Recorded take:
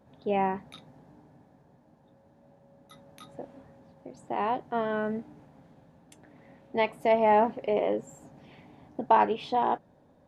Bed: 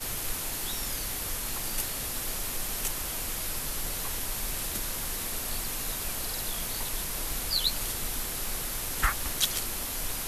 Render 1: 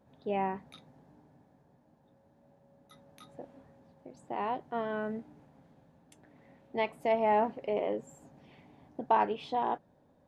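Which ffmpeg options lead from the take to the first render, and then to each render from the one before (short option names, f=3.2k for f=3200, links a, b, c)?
-af "volume=-5dB"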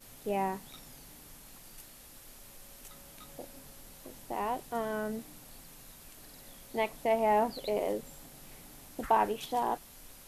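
-filter_complex "[1:a]volume=-19.5dB[a];[0:a][a]amix=inputs=2:normalize=0"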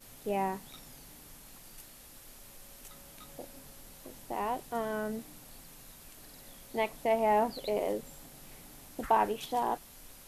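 -af anull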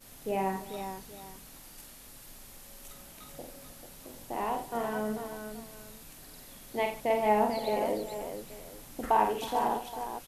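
-af "aecho=1:1:47|85|146|311|441|823:0.562|0.266|0.106|0.141|0.422|0.126"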